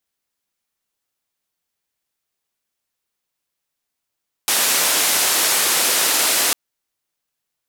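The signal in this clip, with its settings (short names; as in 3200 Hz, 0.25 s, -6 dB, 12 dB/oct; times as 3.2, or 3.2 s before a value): noise band 300–13000 Hz, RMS -17.5 dBFS 2.05 s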